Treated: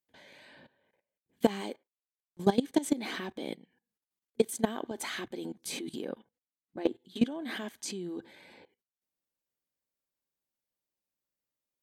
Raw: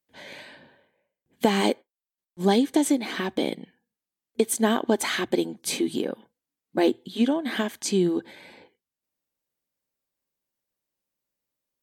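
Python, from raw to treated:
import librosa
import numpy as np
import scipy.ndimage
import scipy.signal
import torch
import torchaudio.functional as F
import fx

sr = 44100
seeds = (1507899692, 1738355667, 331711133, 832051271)

y = fx.high_shelf(x, sr, hz=fx.line((6.1, 8500.0), (6.91, 5400.0)), db=-11.5, at=(6.1, 6.91), fade=0.02)
y = fx.level_steps(y, sr, step_db=18)
y = y * 10.0 ** (-1.5 / 20.0)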